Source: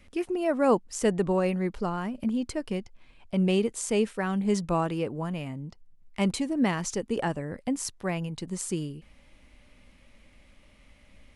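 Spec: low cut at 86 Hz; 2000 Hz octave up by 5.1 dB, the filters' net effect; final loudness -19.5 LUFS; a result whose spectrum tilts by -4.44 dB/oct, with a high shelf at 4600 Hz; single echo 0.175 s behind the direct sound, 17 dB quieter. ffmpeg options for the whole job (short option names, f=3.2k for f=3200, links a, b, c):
-af "highpass=86,equalizer=f=2k:t=o:g=5,highshelf=f=4.6k:g=6.5,aecho=1:1:175:0.141,volume=8.5dB"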